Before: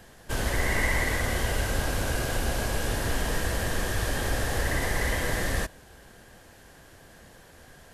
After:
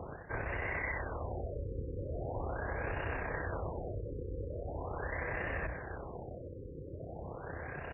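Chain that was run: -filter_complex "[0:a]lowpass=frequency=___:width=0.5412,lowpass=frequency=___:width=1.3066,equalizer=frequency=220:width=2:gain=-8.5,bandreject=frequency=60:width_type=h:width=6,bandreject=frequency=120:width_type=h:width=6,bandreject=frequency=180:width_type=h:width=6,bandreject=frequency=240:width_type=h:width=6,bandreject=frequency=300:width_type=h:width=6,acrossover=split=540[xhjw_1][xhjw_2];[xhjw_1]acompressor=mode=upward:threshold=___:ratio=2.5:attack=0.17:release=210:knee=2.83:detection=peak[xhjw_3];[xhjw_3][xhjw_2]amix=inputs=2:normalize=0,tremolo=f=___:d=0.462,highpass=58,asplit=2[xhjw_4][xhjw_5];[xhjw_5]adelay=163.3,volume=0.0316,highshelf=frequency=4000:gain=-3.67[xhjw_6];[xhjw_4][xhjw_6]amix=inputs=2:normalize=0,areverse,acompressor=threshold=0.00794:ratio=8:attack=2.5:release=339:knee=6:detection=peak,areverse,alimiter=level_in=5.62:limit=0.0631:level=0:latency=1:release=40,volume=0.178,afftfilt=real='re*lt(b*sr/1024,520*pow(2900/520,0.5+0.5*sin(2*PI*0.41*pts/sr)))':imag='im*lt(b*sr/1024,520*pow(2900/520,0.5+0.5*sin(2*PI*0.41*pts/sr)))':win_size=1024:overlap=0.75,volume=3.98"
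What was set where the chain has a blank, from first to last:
5600, 5600, 0.00631, 32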